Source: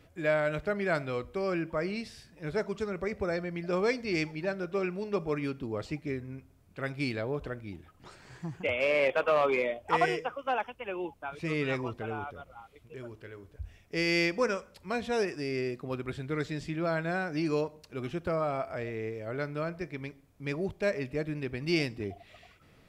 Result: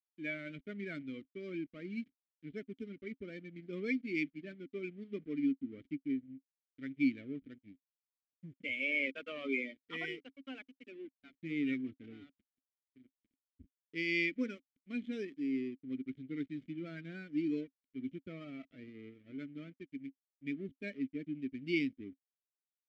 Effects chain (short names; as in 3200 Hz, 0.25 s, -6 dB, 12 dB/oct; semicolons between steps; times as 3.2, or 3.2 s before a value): per-bin expansion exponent 1.5; backlash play -41.5 dBFS; vowel filter i; gain +8.5 dB